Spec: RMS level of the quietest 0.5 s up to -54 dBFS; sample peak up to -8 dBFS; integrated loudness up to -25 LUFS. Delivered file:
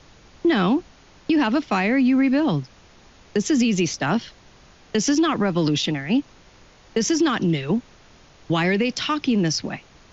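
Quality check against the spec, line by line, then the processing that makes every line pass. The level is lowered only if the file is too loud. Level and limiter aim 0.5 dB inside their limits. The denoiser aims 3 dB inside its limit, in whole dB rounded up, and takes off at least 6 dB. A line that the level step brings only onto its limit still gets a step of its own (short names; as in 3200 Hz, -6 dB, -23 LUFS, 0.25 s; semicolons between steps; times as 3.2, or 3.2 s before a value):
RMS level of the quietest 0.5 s -50 dBFS: fail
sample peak -10.5 dBFS: OK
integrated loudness -21.5 LUFS: fail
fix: denoiser 6 dB, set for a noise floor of -50 dBFS; gain -4 dB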